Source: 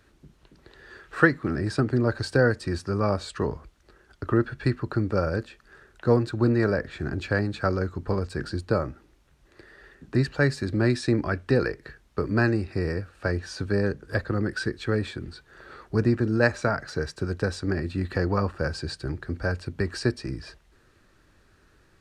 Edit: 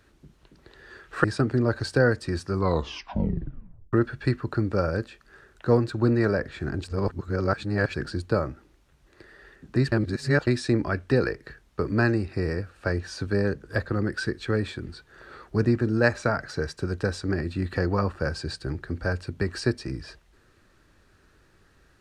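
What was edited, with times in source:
1.24–1.63 cut
2.89 tape stop 1.43 s
7.23–8.33 reverse
10.31–10.86 reverse

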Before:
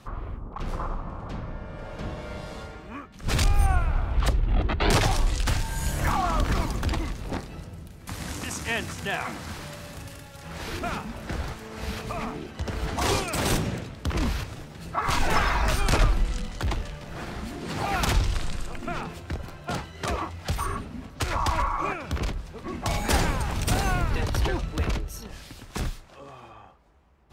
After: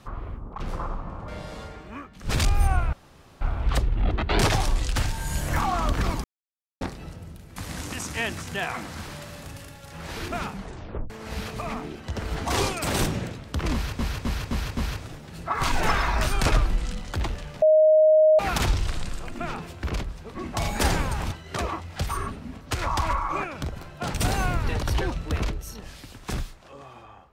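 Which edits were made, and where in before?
1.28–2.27 cut
3.92 insert room tone 0.48 s
6.75–7.32 mute
11.02 tape stop 0.59 s
14.24–14.5 loop, 5 plays
17.09–17.86 bleep 623 Hz -13 dBFS
19.31–19.81 swap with 22.13–23.61

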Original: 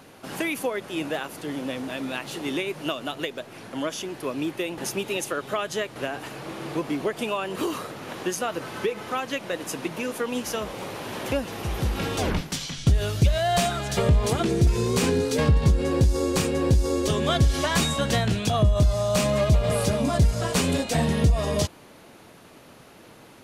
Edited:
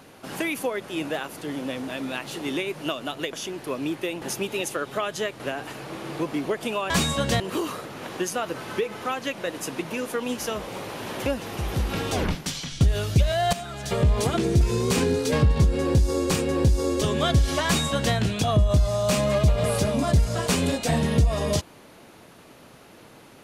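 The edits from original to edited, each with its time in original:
3.33–3.89 cut
13.59–14.19 fade in, from -13.5 dB
17.71–18.21 copy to 7.46

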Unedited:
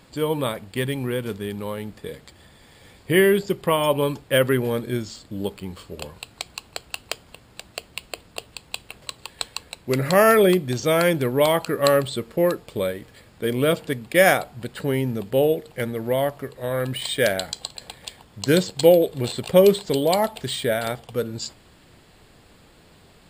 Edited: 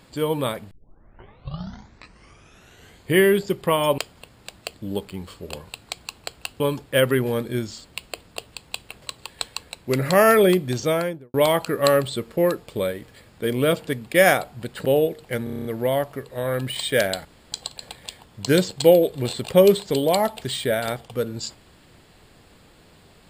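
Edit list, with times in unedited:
0.71 tape start 2.43 s
3.98–5.23 swap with 7.09–7.85
10.77–11.34 studio fade out
14.85–15.32 cut
15.91 stutter 0.03 s, 8 plays
17.51 insert room tone 0.27 s

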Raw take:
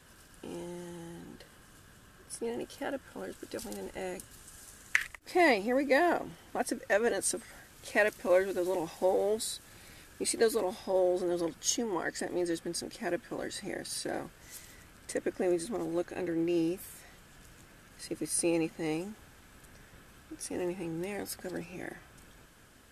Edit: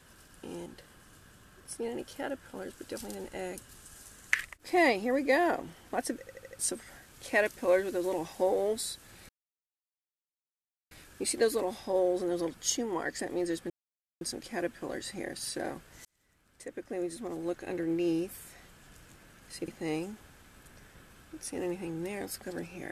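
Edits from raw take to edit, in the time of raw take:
0.66–1.28 cut
6.81 stutter in place 0.08 s, 5 plays
9.91 insert silence 1.62 s
12.7 insert silence 0.51 s
14.54–16.3 fade in
18.17–18.66 cut

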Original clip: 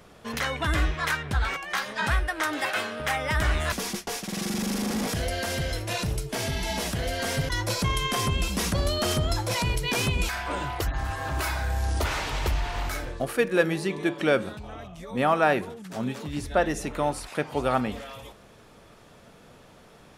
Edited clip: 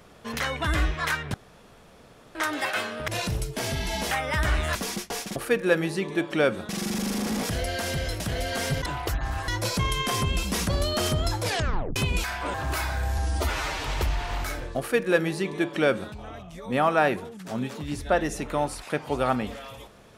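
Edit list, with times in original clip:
1.34–2.35 room tone
5.84–6.87 move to 3.08
9.48 tape stop 0.53 s
10.59–11.21 move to 7.53
11.85–12.29 stretch 1.5×
13.24–14.57 copy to 4.33

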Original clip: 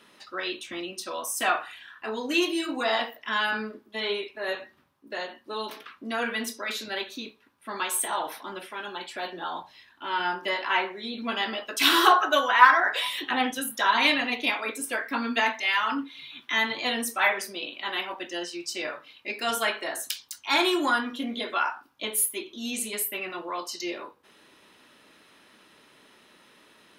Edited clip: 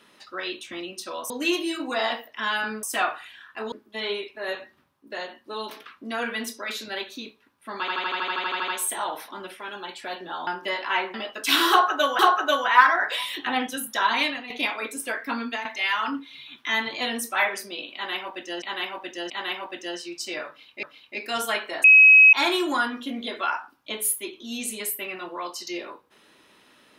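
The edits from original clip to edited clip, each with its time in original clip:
1.3–2.19 move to 3.72
7.8 stutter 0.08 s, 12 plays
9.59–10.27 cut
10.94–11.47 cut
12.03–12.52 loop, 2 plays
13.93–14.34 fade out, to -13 dB
15.22–15.49 fade out, to -12.5 dB
17.78–18.46 loop, 3 plays
18.96–19.31 loop, 2 plays
19.97–20.46 bleep 2550 Hz -8.5 dBFS

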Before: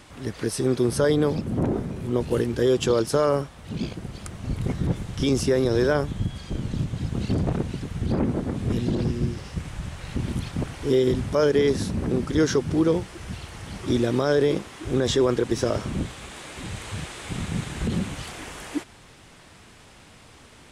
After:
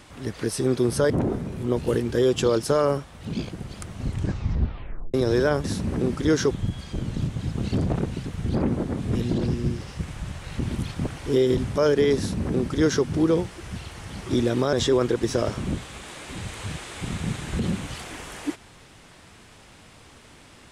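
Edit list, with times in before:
1.1–1.54 cut
4.47 tape stop 1.11 s
11.74–12.61 copy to 6.08
14.3–15.01 cut

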